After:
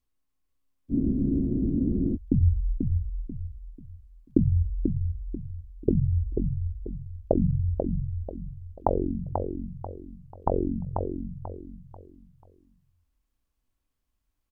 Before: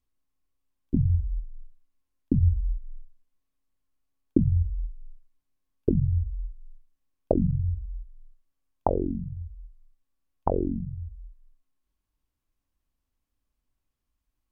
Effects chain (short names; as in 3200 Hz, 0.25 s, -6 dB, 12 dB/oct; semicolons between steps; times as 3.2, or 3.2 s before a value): feedback echo 0.489 s, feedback 33%, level -5.5 dB; spectral freeze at 0.92, 1.22 s